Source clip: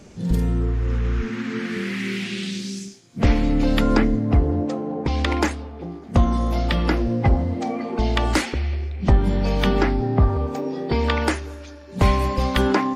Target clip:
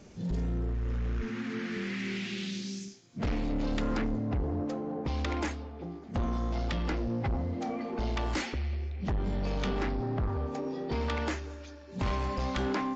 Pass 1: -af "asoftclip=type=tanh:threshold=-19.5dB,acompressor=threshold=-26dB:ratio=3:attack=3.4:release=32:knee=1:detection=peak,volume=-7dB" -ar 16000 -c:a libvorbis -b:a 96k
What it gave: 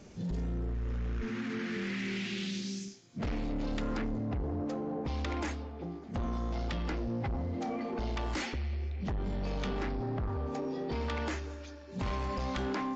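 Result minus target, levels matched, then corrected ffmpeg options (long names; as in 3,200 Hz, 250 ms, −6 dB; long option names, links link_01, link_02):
downward compressor: peak gain reduction +4.5 dB
-af "asoftclip=type=tanh:threshold=-19.5dB,volume=-7dB" -ar 16000 -c:a libvorbis -b:a 96k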